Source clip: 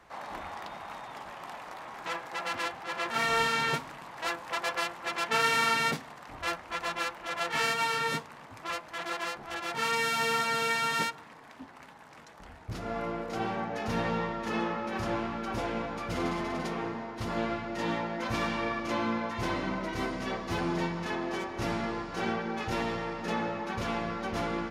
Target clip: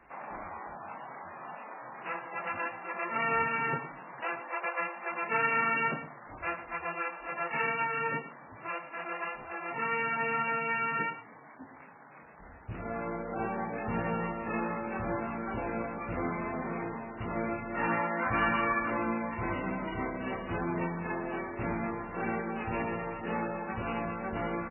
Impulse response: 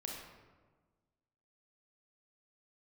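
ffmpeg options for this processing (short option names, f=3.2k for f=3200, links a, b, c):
-filter_complex "[0:a]asettb=1/sr,asplit=3[a][b][c];[a]atrim=end=17.744[d];[b]atrim=start=17.74:end=18.9,asetpts=PTS-STARTPTS,afade=t=in:d=0.004:c=qsin,afade=t=out:st=1.156:d=0.004:c=qsin,equalizer=f=1.4k:w=0.99:g=9[e];[c]atrim=start=18.896[f];[d][e]acrossfade=d=0.004:c1=hsin:c2=qsin[g];[g][f]acrossfade=d=0.004:c1=qsin:c2=hsin,asplit=2[h][i];[i]aecho=0:1:110:0.251[j];[h][j]amix=inputs=2:normalize=0,volume=-1.5dB" -ar 11025 -c:a libmp3lame -b:a 8k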